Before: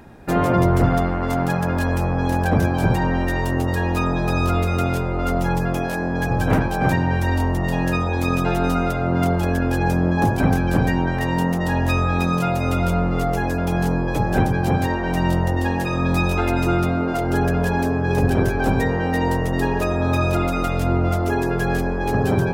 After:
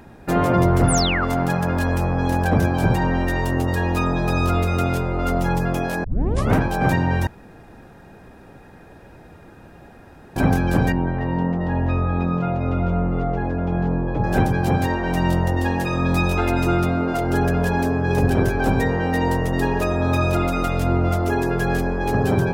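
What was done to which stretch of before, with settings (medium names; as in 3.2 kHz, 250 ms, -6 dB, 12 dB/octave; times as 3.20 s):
0.88–1.25 s: painted sound fall 1.1–11 kHz -24 dBFS
6.04 s: tape start 0.51 s
7.27–10.36 s: room tone
10.92–14.24 s: tape spacing loss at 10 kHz 40 dB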